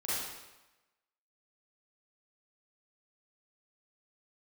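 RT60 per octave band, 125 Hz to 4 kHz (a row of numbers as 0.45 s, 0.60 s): 0.95 s, 0.95 s, 1.0 s, 1.1 s, 1.0 s, 0.90 s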